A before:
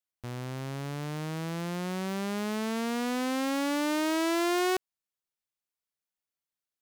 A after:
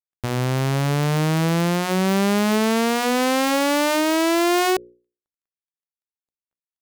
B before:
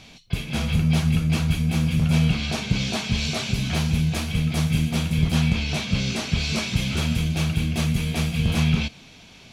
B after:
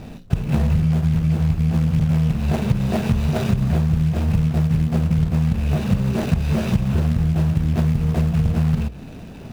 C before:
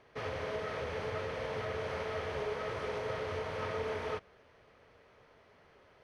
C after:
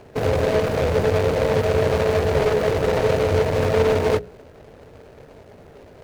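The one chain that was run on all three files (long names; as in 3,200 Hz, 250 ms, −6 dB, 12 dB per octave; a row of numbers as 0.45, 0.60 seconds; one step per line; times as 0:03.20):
running median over 41 samples
mains-hum notches 60/120/180/240/300/360/420/480/540 Hz
dynamic equaliser 270 Hz, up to −7 dB, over −44 dBFS, Q 3
downward compressor 12 to 1, threshold −31 dBFS
loudness normalisation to −20 LKFS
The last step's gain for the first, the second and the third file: +16.5, +16.5, +21.5 decibels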